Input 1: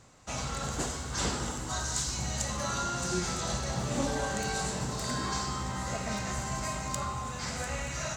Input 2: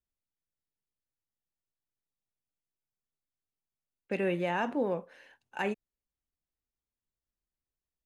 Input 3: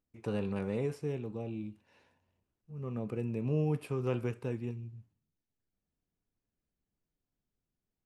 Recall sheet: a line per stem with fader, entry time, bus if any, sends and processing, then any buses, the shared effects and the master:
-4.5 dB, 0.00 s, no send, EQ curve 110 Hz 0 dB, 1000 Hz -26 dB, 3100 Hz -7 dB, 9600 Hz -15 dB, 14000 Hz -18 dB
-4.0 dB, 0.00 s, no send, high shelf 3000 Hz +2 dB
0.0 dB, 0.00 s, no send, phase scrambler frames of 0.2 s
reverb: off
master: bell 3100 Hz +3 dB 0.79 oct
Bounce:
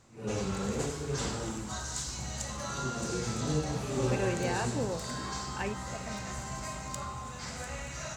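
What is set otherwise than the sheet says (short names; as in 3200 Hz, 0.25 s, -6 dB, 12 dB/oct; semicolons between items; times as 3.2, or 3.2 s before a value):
stem 1: missing EQ curve 110 Hz 0 dB, 1000 Hz -26 dB, 3100 Hz -7 dB, 9600 Hz -15 dB, 14000 Hz -18 dB; master: missing bell 3100 Hz +3 dB 0.79 oct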